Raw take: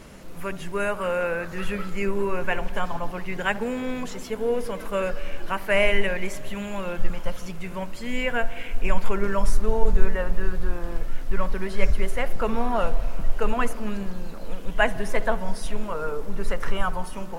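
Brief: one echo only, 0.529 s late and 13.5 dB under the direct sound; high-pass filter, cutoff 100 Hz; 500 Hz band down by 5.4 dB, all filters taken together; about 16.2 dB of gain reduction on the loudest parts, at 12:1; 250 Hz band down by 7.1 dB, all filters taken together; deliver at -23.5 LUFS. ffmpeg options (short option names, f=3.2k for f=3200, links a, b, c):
-af "highpass=100,equalizer=f=250:t=o:g=-8.5,equalizer=f=500:t=o:g=-4.5,acompressor=threshold=-33dB:ratio=12,aecho=1:1:529:0.211,volume=14.5dB"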